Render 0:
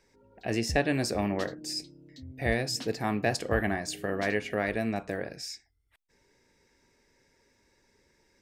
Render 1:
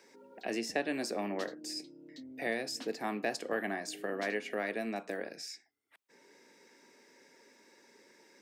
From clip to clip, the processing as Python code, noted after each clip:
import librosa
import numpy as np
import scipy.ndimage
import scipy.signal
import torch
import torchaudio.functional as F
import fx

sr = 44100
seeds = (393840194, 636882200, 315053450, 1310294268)

y = scipy.signal.sosfilt(scipy.signal.butter(4, 220.0, 'highpass', fs=sr, output='sos'), x)
y = fx.band_squash(y, sr, depth_pct=40)
y = y * 10.0 ** (-5.0 / 20.0)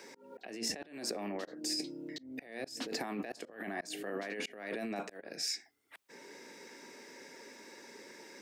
y = fx.over_compress(x, sr, threshold_db=-42.0, ratio=-1.0)
y = fx.auto_swell(y, sr, attack_ms=272.0)
y = y * 10.0 ** (4.5 / 20.0)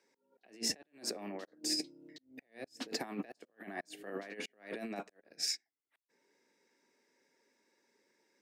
y = fx.upward_expand(x, sr, threshold_db=-51.0, expansion=2.5)
y = y * 10.0 ** (3.0 / 20.0)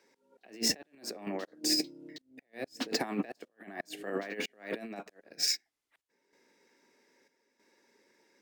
y = fx.chopper(x, sr, hz=0.79, depth_pct=60, duty_pct=75)
y = np.interp(np.arange(len(y)), np.arange(len(y))[::2], y[::2])
y = y * 10.0 ** (7.0 / 20.0)